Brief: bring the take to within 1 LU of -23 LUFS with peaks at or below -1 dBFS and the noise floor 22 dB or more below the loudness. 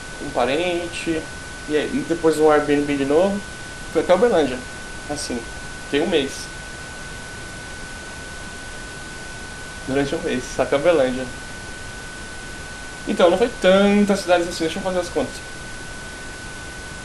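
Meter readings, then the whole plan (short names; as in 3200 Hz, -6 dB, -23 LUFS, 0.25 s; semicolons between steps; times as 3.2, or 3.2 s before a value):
steady tone 1500 Hz; tone level -36 dBFS; noise floor -34 dBFS; noise floor target -42 dBFS; loudness -20.0 LUFS; peak -2.5 dBFS; loudness target -23.0 LUFS
-> notch 1500 Hz, Q 30; noise print and reduce 8 dB; gain -3 dB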